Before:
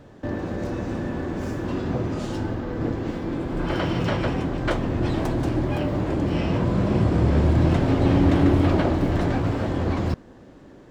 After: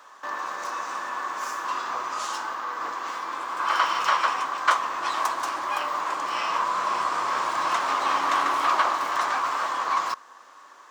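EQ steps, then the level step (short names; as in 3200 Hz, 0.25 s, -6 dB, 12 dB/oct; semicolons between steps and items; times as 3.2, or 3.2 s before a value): resonant high-pass 1100 Hz, resonance Q 6.6; high shelf 4400 Hz +9 dB; bell 6200 Hz +4.5 dB 0.57 oct; 0.0 dB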